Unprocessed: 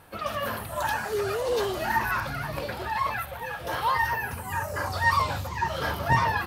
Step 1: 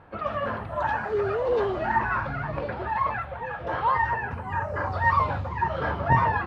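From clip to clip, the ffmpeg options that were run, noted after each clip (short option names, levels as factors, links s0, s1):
-af "lowpass=1700,volume=1.33"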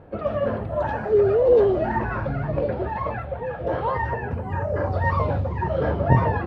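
-af "lowshelf=f=750:t=q:w=1.5:g=9,volume=0.75"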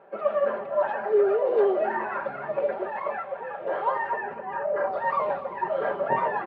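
-af "highpass=570,lowpass=2400,aecho=1:1:5.1:0.66,aecho=1:1:246:0.15"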